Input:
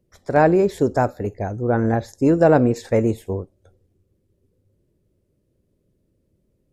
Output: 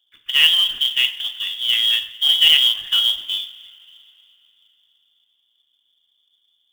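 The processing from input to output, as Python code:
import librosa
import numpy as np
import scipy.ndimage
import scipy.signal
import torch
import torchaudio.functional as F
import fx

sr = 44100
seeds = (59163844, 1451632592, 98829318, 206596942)

y = fx.rev_double_slope(x, sr, seeds[0], early_s=0.51, late_s=3.4, knee_db=-18, drr_db=6.0)
y = fx.freq_invert(y, sr, carrier_hz=3500)
y = fx.quant_float(y, sr, bits=2)
y = F.gain(torch.from_numpy(y), -1.0).numpy()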